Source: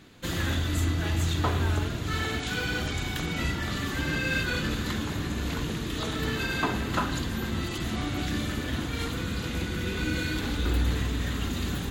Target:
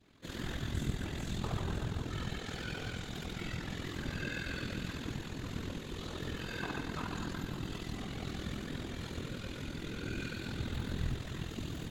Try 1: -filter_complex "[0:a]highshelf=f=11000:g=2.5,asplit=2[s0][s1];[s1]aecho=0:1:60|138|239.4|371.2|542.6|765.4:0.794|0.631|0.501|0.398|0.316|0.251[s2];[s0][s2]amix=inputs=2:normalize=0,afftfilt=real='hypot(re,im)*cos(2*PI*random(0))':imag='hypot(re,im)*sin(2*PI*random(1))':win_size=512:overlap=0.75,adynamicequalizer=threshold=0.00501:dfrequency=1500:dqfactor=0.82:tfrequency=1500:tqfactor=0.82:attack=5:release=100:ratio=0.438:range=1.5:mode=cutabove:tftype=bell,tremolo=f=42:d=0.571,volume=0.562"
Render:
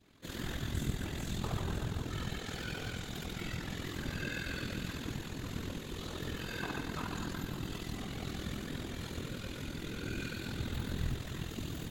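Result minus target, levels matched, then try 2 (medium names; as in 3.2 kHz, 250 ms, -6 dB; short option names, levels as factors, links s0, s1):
8 kHz band +2.5 dB
-filter_complex "[0:a]highshelf=f=11000:g=-9,asplit=2[s0][s1];[s1]aecho=0:1:60|138|239.4|371.2|542.6|765.4:0.794|0.631|0.501|0.398|0.316|0.251[s2];[s0][s2]amix=inputs=2:normalize=0,afftfilt=real='hypot(re,im)*cos(2*PI*random(0))':imag='hypot(re,im)*sin(2*PI*random(1))':win_size=512:overlap=0.75,adynamicequalizer=threshold=0.00501:dfrequency=1500:dqfactor=0.82:tfrequency=1500:tqfactor=0.82:attack=5:release=100:ratio=0.438:range=1.5:mode=cutabove:tftype=bell,tremolo=f=42:d=0.571,volume=0.562"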